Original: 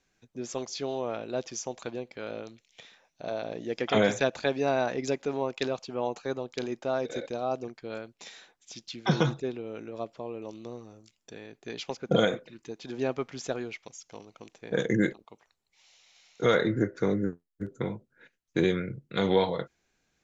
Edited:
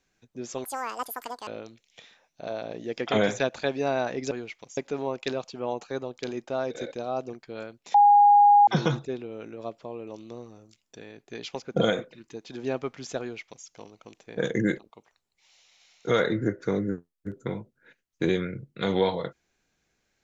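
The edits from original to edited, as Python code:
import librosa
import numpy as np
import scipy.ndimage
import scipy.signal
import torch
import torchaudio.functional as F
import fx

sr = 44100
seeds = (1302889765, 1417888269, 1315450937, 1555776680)

y = fx.edit(x, sr, fx.speed_span(start_s=0.64, length_s=1.64, speed=1.97),
    fx.bleep(start_s=8.29, length_s=0.73, hz=820.0, db=-12.5),
    fx.duplicate(start_s=13.55, length_s=0.46, to_s=5.12), tone=tone)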